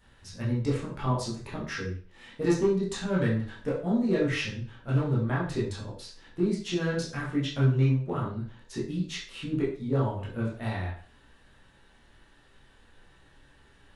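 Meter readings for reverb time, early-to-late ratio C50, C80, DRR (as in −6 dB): 0.40 s, 5.0 dB, 10.0 dB, −7.5 dB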